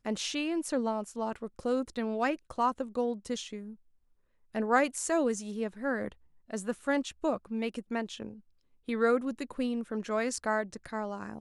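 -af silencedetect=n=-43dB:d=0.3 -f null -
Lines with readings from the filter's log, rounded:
silence_start: 3.73
silence_end: 4.55 | silence_duration: 0.81
silence_start: 6.12
silence_end: 6.50 | silence_duration: 0.38
silence_start: 8.34
silence_end: 8.88 | silence_duration: 0.55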